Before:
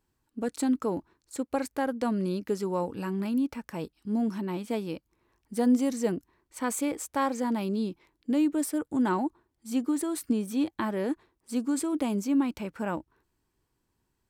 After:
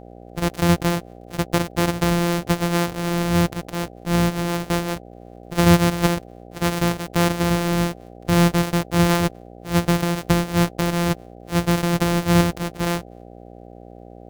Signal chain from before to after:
samples sorted by size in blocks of 256 samples
hum with harmonics 60 Hz, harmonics 13, −50 dBFS −1 dB per octave
level +8.5 dB

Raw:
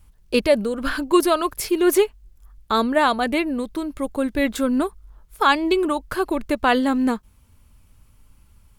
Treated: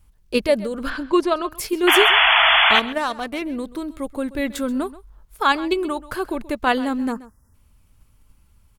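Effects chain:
0:07.12–0:07.54: time-frequency box erased 2,000–4,800 Hz
0:02.75–0:03.42: power curve on the samples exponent 1.4
0:01.87–0:02.80: sound drawn into the spectrogram noise 630–3,500 Hz −14 dBFS
in parallel at −3 dB: output level in coarse steps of 16 dB
0:00.90–0:01.52: on the sum: high-frequency loss of the air 100 metres
on a send: single-tap delay 131 ms −18 dB
on the sum: level −4.5 dB

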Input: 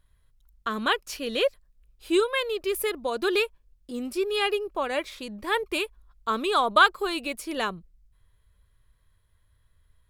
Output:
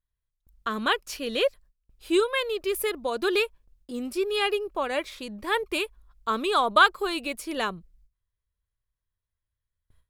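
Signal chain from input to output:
noise gate with hold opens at −51 dBFS

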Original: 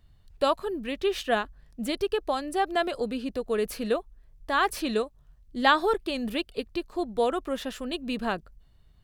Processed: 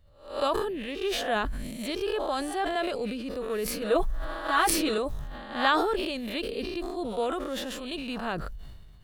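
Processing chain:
peak hold with a rise ahead of every peak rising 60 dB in 0.45 s
0:03.81–0:04.98: comb filter 6.2 ms, depth 97%
level that may fall only so fast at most 33 dB per second
level −5 dB

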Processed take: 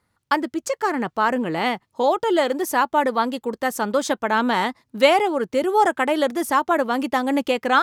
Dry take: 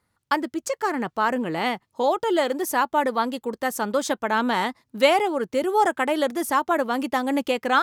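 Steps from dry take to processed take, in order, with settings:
high-shelf EQ 8,400 Hz −4 dB
level +2.5 dB

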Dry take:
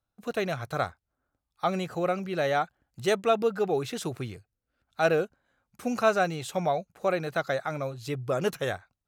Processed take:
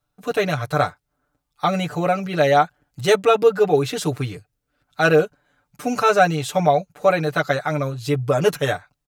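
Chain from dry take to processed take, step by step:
comb filter 6.8 ms, depth 99%
level +6 dB

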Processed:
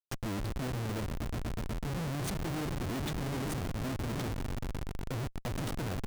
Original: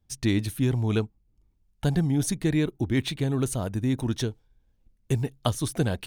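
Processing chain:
echo that builds up and dies away 122 ms, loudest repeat 5, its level −16 dB
0:03.56–0:04.08: bit-depth reduction 6 bits, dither none
comparator with hysteresis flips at −28.5 dBFS
level −8 dB

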